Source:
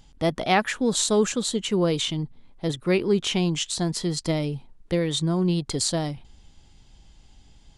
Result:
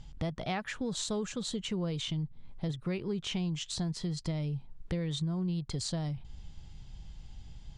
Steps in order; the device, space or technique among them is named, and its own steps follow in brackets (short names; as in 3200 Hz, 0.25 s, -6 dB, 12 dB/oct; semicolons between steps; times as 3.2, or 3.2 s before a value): jukebox (LPF 7000 Hz 12 dB/oct; resonant low shelf 200 Hz +7 dB, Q 1.5; compressor 4:1, threshold -32 dBFS, peak gain reduction 14.5 dB); gain -1.5 dB